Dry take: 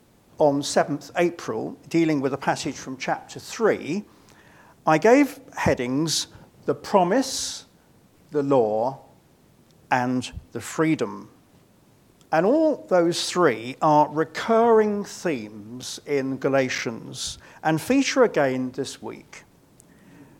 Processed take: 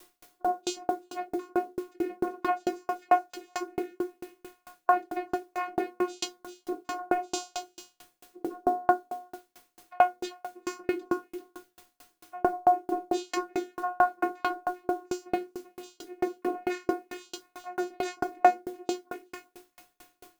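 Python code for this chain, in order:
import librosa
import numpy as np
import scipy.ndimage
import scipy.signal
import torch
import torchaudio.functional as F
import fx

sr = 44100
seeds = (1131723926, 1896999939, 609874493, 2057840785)

p1 = fx.peak_eq(x, sr, hz=170.0, db=-13.0, octaves=1.4)
p2 = fx.spec_gate(p1, sr, threshold_db=-20, keep='strong')
p3 = fx.vocoder(p2, sr, bands=8, carrier='saw', carrier_hz=360.0)
p4 = fx.over_compress(p3, sr, threshold_db=-24.0, ratio=-0.5)
p5 = p4 + fx.echo_single(p4, sr, ms=389, db=-14.0, dry=0)
p6 = fx.quant_dither(p5, sr, seeds[0], bits=10, dither='triangular')
p7 = fx.hum_notches(p6, sr, base_hz=60, count=6)
p8 = fx.dynamic_eq(p7, sr, hz=2800.0, q=4.8, threshold_db=-57.0, ratio=4.0, max_db=-7)
p9 = fx.notch(p8, sr, hz=800.0, q=12.0)
p10 = fx.room_shoebox(p9, sr, seeds[1], volume_m3=230.0, walls='furnished', distance_m=2.3)
p11 = fx.tremolo_decay(p10, sr, direction='decaying', hz=4.5, depth_db=40)
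y = p11 * 10.0 ** (5.5 / 20.0)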